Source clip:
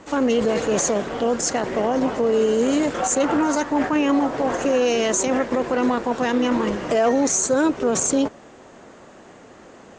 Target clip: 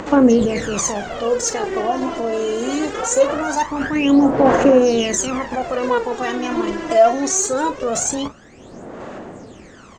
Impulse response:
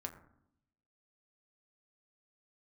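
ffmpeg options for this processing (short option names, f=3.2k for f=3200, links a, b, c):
-filter_complex "[0:a]asplit=2[a][b];[b]adelay=39,volume=-10.5dB[c];[a][c]amix=inputs=2:normalize=0,acompressor=mode=upward:threshold=-35dB:ratio=2.5,aphaser=in_gain=1:out_gain=1:delay=3:decay=0.72:speed=0.22:type=sinusoidal,volume=-1.5dB"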